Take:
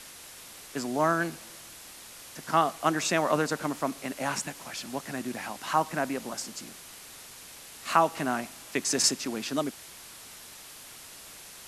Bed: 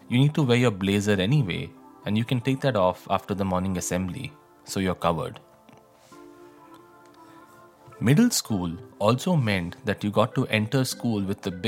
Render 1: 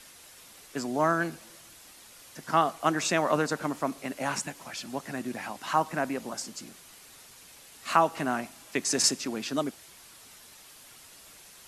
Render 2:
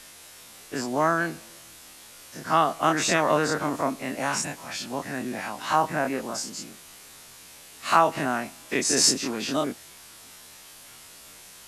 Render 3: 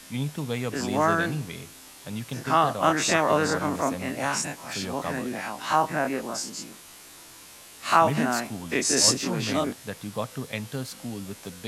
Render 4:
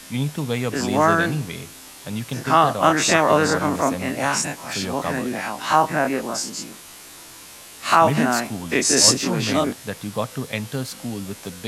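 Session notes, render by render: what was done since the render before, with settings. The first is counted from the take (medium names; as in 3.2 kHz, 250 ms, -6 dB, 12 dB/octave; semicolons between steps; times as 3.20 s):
noise reduction 6 dB, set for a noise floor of -47 dBFS
every event in the spectrogram widened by 60 ms
add bed -9.5 dB
trim +5.5 dB; peak limiter -2 dBFS, peak gain reduction 3 dB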